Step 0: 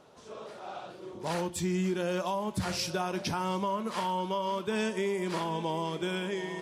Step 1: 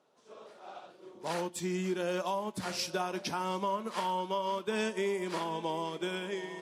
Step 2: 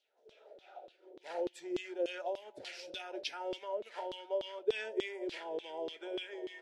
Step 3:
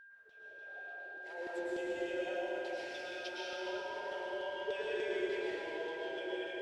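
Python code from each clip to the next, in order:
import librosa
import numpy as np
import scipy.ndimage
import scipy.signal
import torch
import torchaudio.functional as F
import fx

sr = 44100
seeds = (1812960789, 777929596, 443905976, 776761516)

y1 = scipy.signal.sosfilt(scipy.signal.butter(2, 210.0, 'highpass', fs=sr, output='sos'), x)
y1 = fx.upward_expand(y1, sr, threshold_db=-54.0, expansion=1.5)
y2 = fx.fixed_phaser(y1, sr, hz=460.0, stages=4)
y2 = fx.filter_lfo_bandpass(y2, sr, shape='saw_down', hz=3.4, low_hz=370.0, high_hz=3800.0, q=2.5)
y2 = y2 * 10.0 ** (5.5 / 20.0)
y3 = y2 + 10.0 ** (-46.0 / 20.0) * np.sin(2.0 * np.pi * 1600.0 * np.arange(len(y2)) / sr)
y3 = fx.rev_plate(y3, sr, seeds[0], rt60_s=4.3, hf_ratio=0.65, predelay_ms=95, drr_db=-8.0)
y3 = y3 * 10.0 ** (-9.0 / 20.0)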